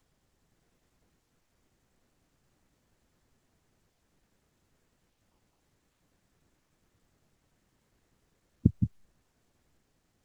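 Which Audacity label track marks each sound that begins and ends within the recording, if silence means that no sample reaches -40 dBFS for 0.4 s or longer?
8.650000	8.870000	sound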